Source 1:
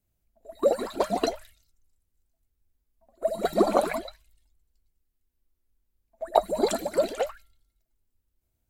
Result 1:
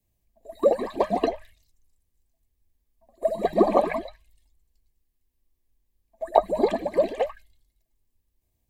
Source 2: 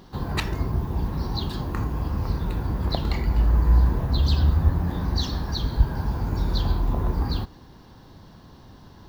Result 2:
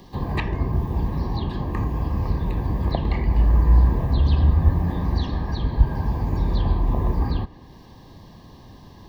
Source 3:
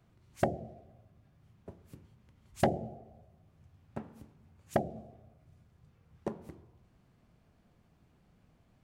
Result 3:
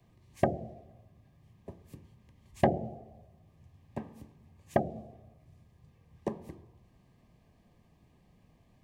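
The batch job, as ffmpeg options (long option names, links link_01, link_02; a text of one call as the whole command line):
ffmpeg -i in.wav -filter_complex "[0:a]asuperstop=centerf=1400:order=20:qfactor=4.7,acrossover=split=210|1100|3000[link_01][link_02][link_03][link_04];[link_04]acompressor=threshold=-58dB:ratio=6[link_05];[link_01][link_02][link_03][link_05]amix=inputs=4:normalize=0,volume=2.5dB" out.wav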